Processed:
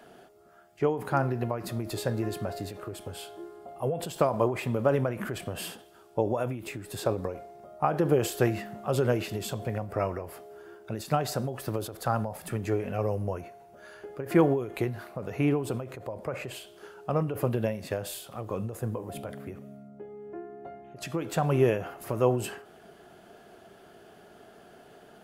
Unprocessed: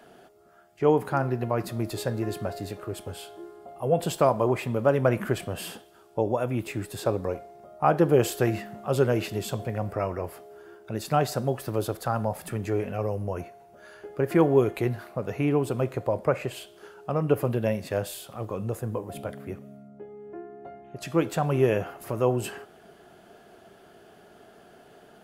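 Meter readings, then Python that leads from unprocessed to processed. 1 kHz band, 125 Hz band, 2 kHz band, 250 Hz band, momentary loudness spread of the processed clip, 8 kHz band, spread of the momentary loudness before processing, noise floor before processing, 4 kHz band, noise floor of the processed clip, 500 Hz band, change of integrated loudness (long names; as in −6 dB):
−3.0 dB, −2.5 dB, −2.0 dB, −2.5 dB, 17 LU, −1.5 dB, 18 LU, −54 dBFS, −1.5 dB, −54 dBFS, −3.5 dB, −3.0 dB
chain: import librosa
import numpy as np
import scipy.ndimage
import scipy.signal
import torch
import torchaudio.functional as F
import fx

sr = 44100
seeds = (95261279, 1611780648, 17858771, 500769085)

y = fx.end_taper(x, sr, db_per_s=100.0)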